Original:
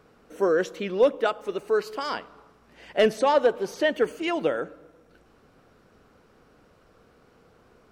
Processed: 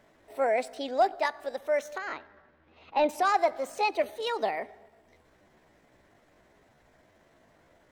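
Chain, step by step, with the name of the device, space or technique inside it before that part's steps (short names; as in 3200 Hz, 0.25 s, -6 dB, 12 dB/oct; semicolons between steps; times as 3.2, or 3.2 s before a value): chipmunk voice (pitch shift +5.5 st); 1.98–3.09 air absorption 260 m; gain -4 dB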